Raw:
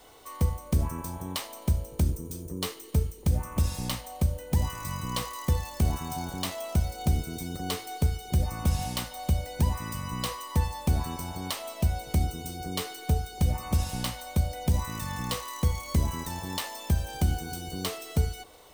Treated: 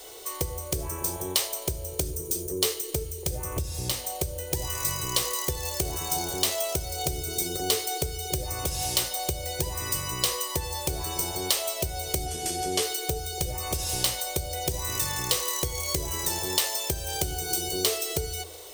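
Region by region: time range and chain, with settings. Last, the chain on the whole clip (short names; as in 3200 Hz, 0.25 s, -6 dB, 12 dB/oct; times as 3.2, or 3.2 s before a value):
3.43–3.92 HPF 48 Hz + low shelf 290 Hz +11.5 dB
12.26–12.83 CVSD 64 kbps + notch 3800 Hz, Q 9.6 + small resonant body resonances 230/710/3400 Hz, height 12 dB, ringing for 95 ms
whole clip: de-hum 82.4 Hz, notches 7; compressor, threshold -29 dBFS; EQ curve 150 Hz 0 dB, 230 Hz -13 dB, 370 Hz +13 dB, 1000 Hz +1 dB, 6000 Hz +14 dB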